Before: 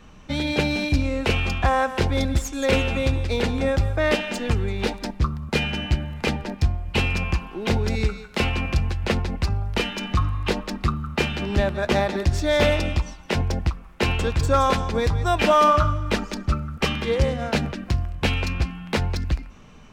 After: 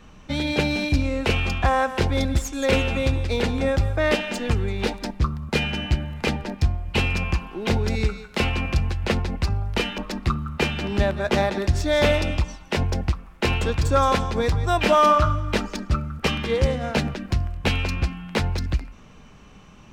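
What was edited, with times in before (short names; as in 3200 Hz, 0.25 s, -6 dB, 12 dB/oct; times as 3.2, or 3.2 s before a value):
9.98–10.56 cut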